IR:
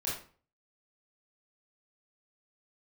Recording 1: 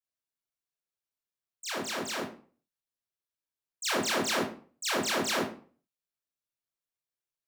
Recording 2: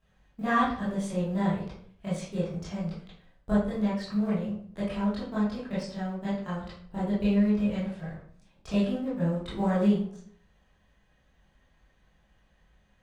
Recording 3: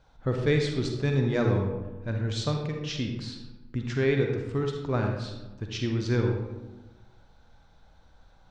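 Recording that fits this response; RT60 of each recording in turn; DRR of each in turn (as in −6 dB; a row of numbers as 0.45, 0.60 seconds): 1; 0.40, 0.55, 1.1 seconds; −7.5, −11.5, 2.0 decibels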